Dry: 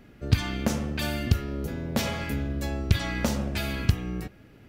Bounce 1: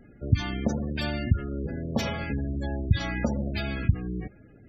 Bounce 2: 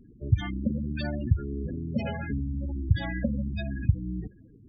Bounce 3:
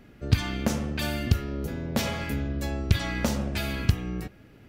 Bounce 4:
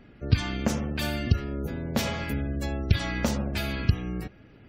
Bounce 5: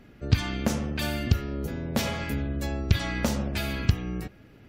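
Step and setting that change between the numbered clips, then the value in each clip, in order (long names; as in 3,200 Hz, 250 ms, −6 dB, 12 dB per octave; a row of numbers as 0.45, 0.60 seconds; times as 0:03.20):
gate on every frequency bin, under each frame's peak: −20, −10, −60, −35, −45 decibels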